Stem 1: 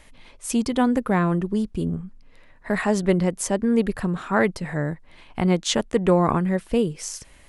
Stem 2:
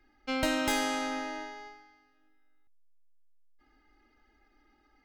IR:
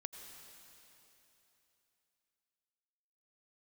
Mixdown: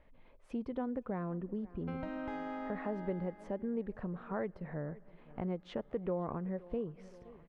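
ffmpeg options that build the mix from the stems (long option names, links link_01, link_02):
-filter_complex "[0:a]firequalizer=gain_entry='entry(330,0);entry(530,4);entry(800,-1);entry(6900,-29)':delay=0.05:min_phase=1,volume=-12dB,asplit=3[link_01][link_02][link_03];[link_02]volume=-20dB[link_04];[link_03]volume=-23.5dB[link_05];[1:a]lowpass=1300,acompressor=threshold=-40dB:ratio=2.5,adelay=1600,volume=-2.5dB,asplit=2[link_06][link_07];[link_07]volume=-3.5dB[link_08];[2:a]atrim=start_sample=2205[link_09];[link_04][link_08]amix=inputs=2:normalize=0[link_10];[link_10][link_09]afir=irnorm=-1:irlink=0[link_11];[link_05]aecho=0:1:519|1038|1557|2076|2595|3114|3633:1|0.5|0.25|0.125|0.0625|0.0312|0.0156[link_12];[link_01][link_06][link_11][link_12]amix=inputs=4:normalize=0,highshelf=frequency=6700:gain=-7,acompressor=threshold=-38dB:ratio=2"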